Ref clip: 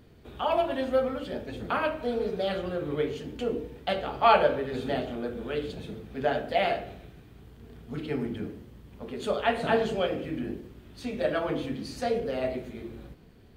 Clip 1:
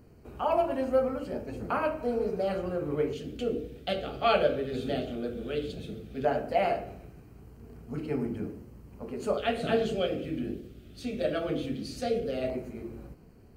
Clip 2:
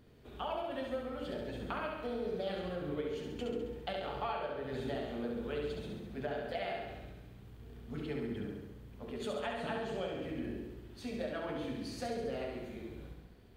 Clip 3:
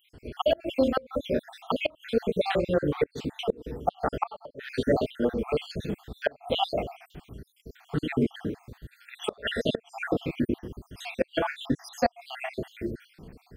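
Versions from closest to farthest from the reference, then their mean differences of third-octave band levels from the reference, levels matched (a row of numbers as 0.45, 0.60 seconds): 1, 2, 3; 2.0, 5.0, 11.0 decibels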